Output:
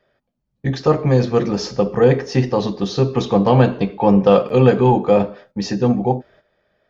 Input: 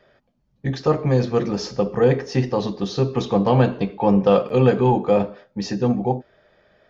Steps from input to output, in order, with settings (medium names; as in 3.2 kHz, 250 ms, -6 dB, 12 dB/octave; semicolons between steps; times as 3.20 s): gate -50 dBFS, range -11 dB; trim +3.5 dB